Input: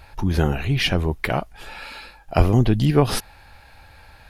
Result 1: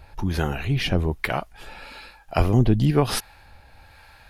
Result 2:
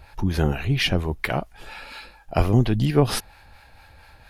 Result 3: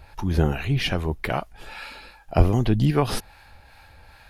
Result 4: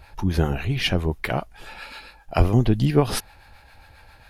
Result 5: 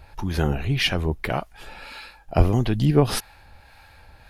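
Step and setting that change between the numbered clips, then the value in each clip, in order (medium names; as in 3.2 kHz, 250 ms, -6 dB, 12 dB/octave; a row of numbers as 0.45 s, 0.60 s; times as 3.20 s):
harmonic tremolo, rate: 1.1 Hz, 4.3 Hz, 2.5 Hz, 7.4 Hz, 1.7 Hz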